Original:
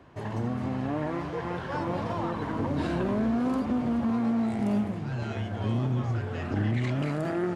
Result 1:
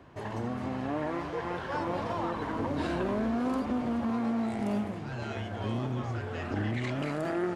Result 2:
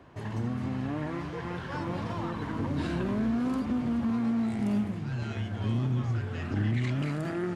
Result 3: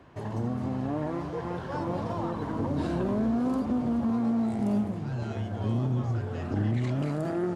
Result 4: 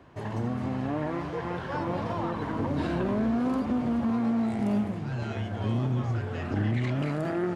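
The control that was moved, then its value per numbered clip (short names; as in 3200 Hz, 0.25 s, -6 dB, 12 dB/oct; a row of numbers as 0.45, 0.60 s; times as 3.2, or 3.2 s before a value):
dynamic EQ, frequency: 140, 630, 2200, 8300 Hz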